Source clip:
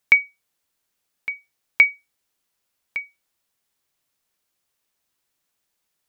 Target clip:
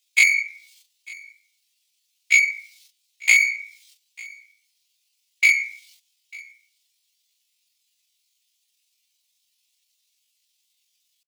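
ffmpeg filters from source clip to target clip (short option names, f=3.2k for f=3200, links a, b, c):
-filter_complex "[0:a]asplit=2[a][b];[b]highpass=f=720:p=1,volume=14dB,asoftclip=type=tanh:threshold=-2.5dB[c];[a][c]amix=inputs=2:normalize=0,lowpass=f=2.2k:p=1,volume=-6dB,acrossover=split=210|3300[d][e][f];[d]acompressor=threshold=-56dB:ratio=4[g];[e]acompressor=threshold=-13dB:ratio=4[h];[f]acompressor=threshold=-34dB:ratio=4[i];[g][h][i]amix=inputs=3:normalize=0,highshelf=f=3k:g=-6.5,asplit=2[j][k];[k]volume=20dB,asoftclip=hard,volume=-20dB,volume=-7dB[l];[j][l]amix=inputs=2:normalize=0,afftfilt=real='hypot(re,im)*cos(PI*b)':imag='0':win_size=1024:overlap=0.75,aexciter=amount=13.4:drive=10:freq=2.5k,afftfilt=real='hypot(re,im)*cos(2*PI*random(0))':imag='hypot(re,im)*sin(2*PI*random(1))':win_size=512:overlap=0.75,agate=range=-16dB:threshold=-41dB:ratio=16:detection=peak,acompressor=threshold=-18dB:ratio=16,atempo=0.54,adynamicequalizer=threshold=0.0178:dfrequency=4400:dqfactor=0.91:tfrequency=4400:tqfactor=0.91:attack=5:release=100:ratio=0.375:range=2:mode=boostabove:tftype=bell,asplit=2[m][n];[n]aecho=0:1:897:0.0668[o];[m][o]amix=inputs=2:normalize=0,volume=3dB"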